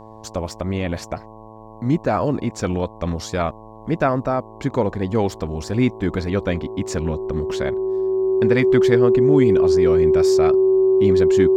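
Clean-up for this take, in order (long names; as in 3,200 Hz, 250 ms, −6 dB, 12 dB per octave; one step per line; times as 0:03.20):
hum removal 109.9 Hz, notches 10
notch filter 380 Hz, Q 30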